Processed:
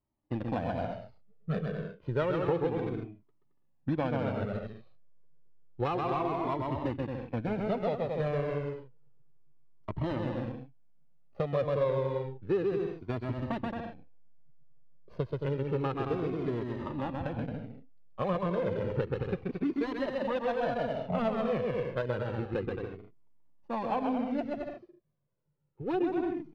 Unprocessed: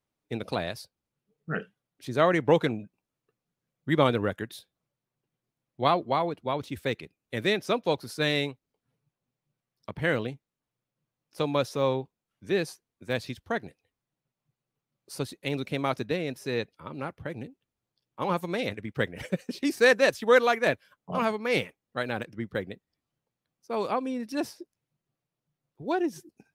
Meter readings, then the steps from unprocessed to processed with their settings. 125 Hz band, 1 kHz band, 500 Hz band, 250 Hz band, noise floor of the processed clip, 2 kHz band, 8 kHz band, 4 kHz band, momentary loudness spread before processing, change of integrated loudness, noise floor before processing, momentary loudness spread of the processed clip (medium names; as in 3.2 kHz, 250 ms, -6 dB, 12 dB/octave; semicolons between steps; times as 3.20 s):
+1.0 dB, -4.5 dB, -3.5 dB, -1.5 dB, -67 dBFS, -12.0 dB, under -20 dB, -14.5 dB, 15 LU, -4.5 dB, under -85 dBFS, 10 LU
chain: median filter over 25 samples; distance through air 310 m; bouncing-ball echo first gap 130 ms, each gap 0.7×, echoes 5; in parallel at -10 dB: hysteresis with a dead band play -30 dBFS; on the sum: compression 4:1, threshold -30 dBFS, peak gain reduction 14 dB; Shepard-style flanger falling 0.3 Hz; trim +7 dB